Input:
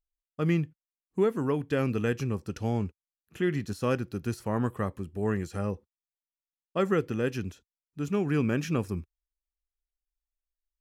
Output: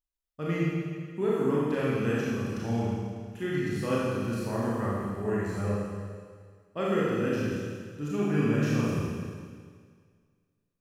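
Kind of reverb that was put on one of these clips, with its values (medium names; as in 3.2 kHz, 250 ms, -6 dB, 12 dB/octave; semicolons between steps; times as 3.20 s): Schroeder reverb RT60 1.9 s, combs from 27 ms, DRR -7.5 dB; trim -7 dB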